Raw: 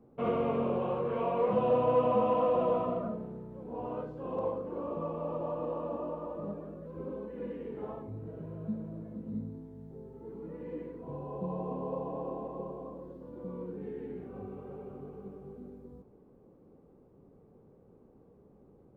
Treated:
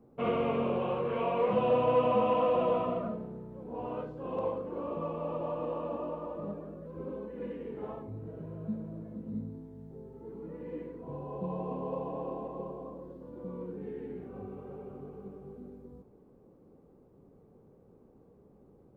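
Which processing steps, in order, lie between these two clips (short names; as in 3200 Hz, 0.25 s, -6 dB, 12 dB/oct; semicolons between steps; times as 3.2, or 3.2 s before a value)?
dynamic EQ 2700 Hz, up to +7 dB, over -55 dBFS, Q 1.1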